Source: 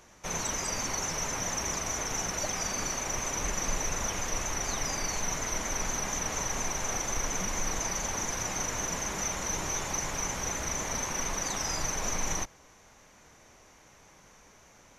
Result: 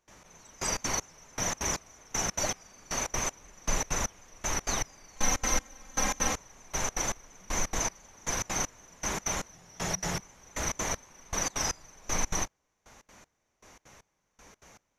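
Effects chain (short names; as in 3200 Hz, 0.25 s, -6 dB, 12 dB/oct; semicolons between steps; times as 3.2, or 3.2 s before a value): 5.16–6.33 comb 3.8 ms, depth 89%; step gate ".xx.....xx" 196 bpm -24 dB; 9.53–10.2 frequency shift -190 Hz; gain +2.5 dB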